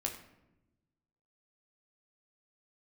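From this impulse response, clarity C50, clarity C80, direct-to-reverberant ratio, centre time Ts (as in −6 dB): 8.5 dB, 11.0 dB, 1.0 dB, 20 ms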